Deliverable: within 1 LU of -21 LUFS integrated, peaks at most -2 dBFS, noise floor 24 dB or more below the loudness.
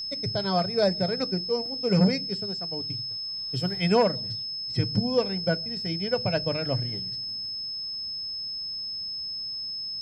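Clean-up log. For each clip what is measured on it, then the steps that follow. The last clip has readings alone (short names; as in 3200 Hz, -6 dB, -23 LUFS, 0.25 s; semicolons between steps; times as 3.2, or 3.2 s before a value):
steady tone 5200 Hz; tone level -31 dBFS; loudness -27.0 LUFS; peak -9.0 dBFS; loudness target -21.0 LUFS
-> notch 5200 Hz, Q 30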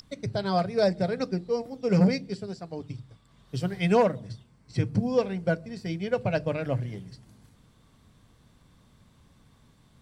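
steady tone none; loudness -28.0 LUFS; peak -9.5 dBFS; loudness target -21.0 LUFS
-> gain +7 dB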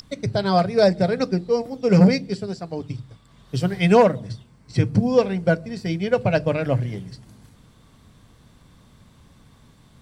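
loudness -21.0 LUFS; peak -2.5 dBFS; noise floor -54 dBFS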